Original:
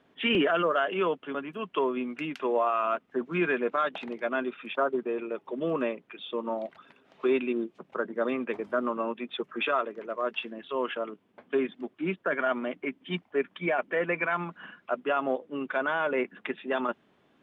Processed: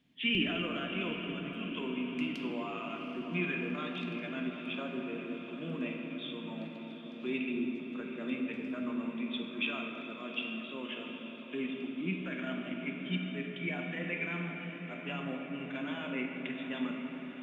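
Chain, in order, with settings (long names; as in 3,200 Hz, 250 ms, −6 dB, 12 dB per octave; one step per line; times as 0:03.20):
flat-topped bell 780 Hz −15 dB 2.5 octaves
feedback delay with all-pass diffusion 774 ms, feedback 66%, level −11.5 dB
on a send at −1 dB: convolution reverb RT60 3.2 s, pre-delay 6 ms
on the sum: level −3 dB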